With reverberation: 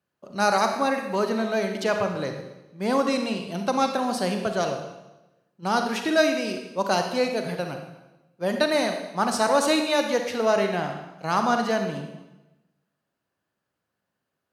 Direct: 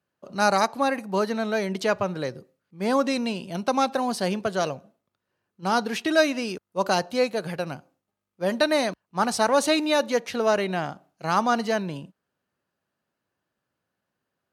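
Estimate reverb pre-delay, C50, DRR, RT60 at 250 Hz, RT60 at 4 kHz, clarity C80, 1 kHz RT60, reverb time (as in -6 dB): 35 ms, 6.0 dB, 5.0 dB, 1.1 s, 0.95 s, 8.0 dB, 1.0 s, 1.0 s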